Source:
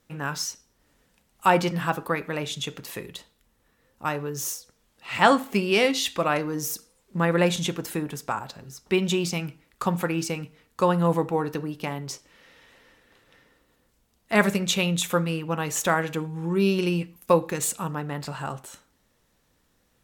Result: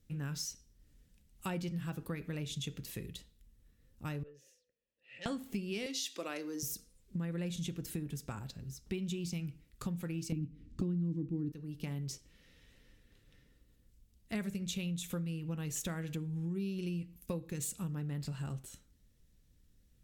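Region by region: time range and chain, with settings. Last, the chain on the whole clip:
0:04.23–0:05.26: formant filter e + saturating transformer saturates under 2,600 Hz
0:05.86–0:06.63: high-pass filter 300 Hz 24 dB per octave + parametric band 5,600 Hz +6.5 dB 0.81 octaves
0:10.32–0:11.52: low shelf with overshoot 440 Hz +12 dB, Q 3 + linearly interpolated sample-rate reduction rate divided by 3×
whole clip: guitar amp tone stack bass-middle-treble 10-0-1; downward compressor, threshold −48 dBFS; level +13 dB

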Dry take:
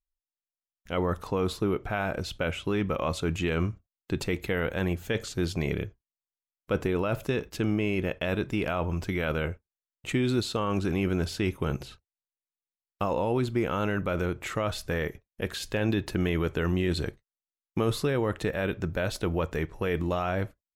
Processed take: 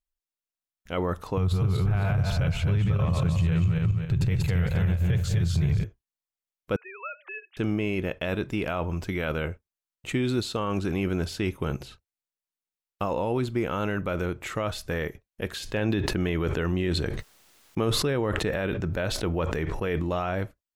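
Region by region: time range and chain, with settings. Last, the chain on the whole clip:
0:01.37–0:05.84: feedback delay that plays each chunk backwards 134 ms, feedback 52%, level −1.5 dB + low shelf with overshoot 190 Hz +12.5 dB, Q 3 + downward compressor 4 to 1, threshold −21 dBFS
0:06.76–0:07.57: three sine waves on the formant tracks + high-pass filter 1,400 Hz
0:15.60–0:20.34: high-shelf EQ 7,200 Hz −6 dB + level that may fall only so fast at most 25 dB per second
whole clip: no processing

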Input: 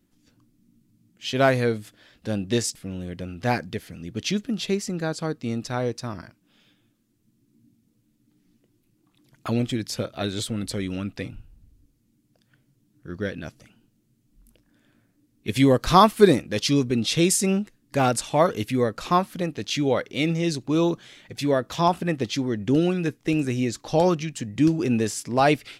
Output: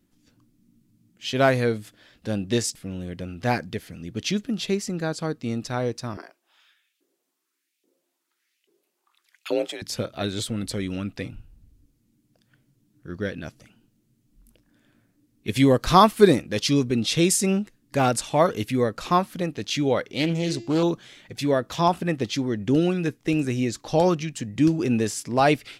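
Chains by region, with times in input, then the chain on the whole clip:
0:06.17–0:09.82: auto-filter high-pass saw up 1.2 Hz 350–2,800 Hz + frequency shifter +48 Hz
0:20.04–0:20.83: hum removal 341.4 Hz, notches 23 + highs frequency-modulated by the lows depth 0.2 ms
whole clip: no processing

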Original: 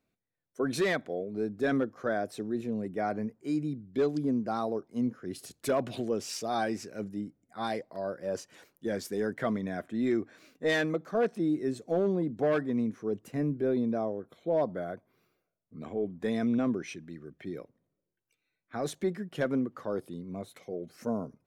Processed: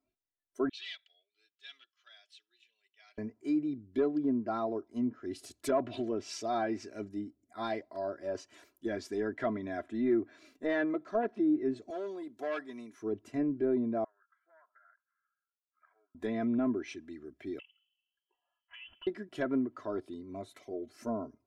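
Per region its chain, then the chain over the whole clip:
0:00.69–0:03.18: dynamic equaliser 4,100 Hz, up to +7 dB, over −51 dBFS, Q 0.91 + four-pole ladder band-pass 3,300 Hz, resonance 65%
0:11.90–0:13.02: high-pass filter 1,200 Hz 6 dB per octave + high-shelf EQ 9,000 Hz +8.5 dB
0:14.04–0:16.15: flat-topped band-pass 1,500 Hz, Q 3.4 + downward compressor 8 to 1, threshold −57 dBFS
0:17.59–0:19.07: voice inversion scrambler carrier 3,200 Hz + downward compressor 4 to 1, threshold −48 dBFS
whole clip: treble cut that deepens with the level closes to 1,700 Hz, closed at −24.5 dBFS; comb filter 3 ms, depth 83%; noise reduction from a noise print of the clip's start 10 dB; level −4 dB

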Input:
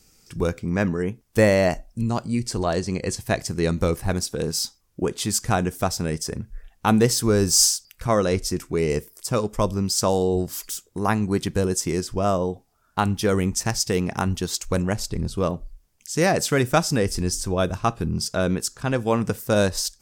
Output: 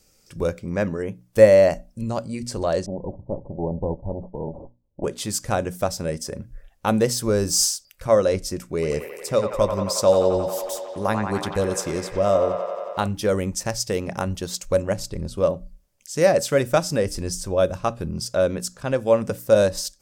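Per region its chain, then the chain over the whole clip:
0:02.86–0:05.04: lower of the sound and its delayed copy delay 0.67 ms + Butterworth low-pass 930 Hz 72 dB per octave
0:08.69–0:13.07: dynamic equaliser 3,700 Hz, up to +6 dB, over −51 dBFS, Q 6 + delay with a band-pass on its return 90 ms, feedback 82%, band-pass 1,300 Hz, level −4 dB
whole clip: parametric band 560 Hz +14 dB 0.22 octaves; mains-hum notches 60/120/180/240/300 Hz; level −3 dB

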